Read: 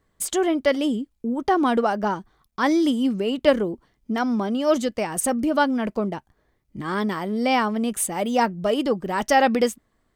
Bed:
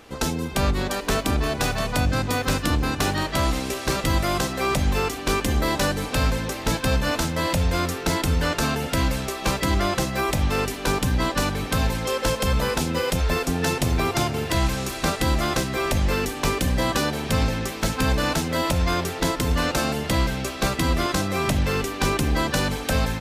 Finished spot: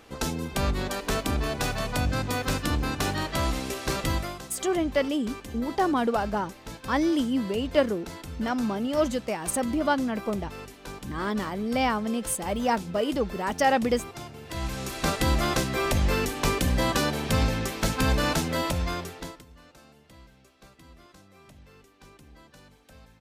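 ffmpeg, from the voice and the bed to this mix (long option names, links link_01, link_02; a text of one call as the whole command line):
ffmpeg -i stem1.wav -i stem2.wav -filter_complex "[0:a]adelay=4300,volume=-4.5dB[link_01];[1:a]volume=10.5dB,afade=type=out:start_time=4.09:duration=0.28:silence=0.237137,afade=type=in:start_time=14.43:duration=0.72:silence=0.177828,afade=type=out:start_time=18.38:duration=1.07:silence=0.0398107[link_02];[link_01][link_02]amix=inputs=2:normalize=0" out.wav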